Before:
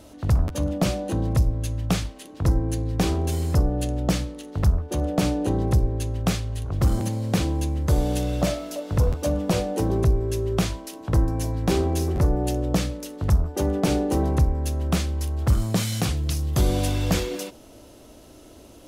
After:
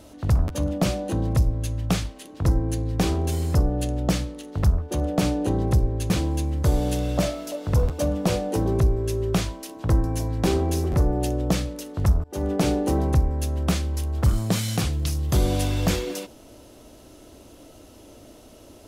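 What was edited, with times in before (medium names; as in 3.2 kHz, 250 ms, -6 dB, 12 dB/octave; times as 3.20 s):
6.10–7.34 s: delete
13.48–13.75 s: fade in, from -22.5 dB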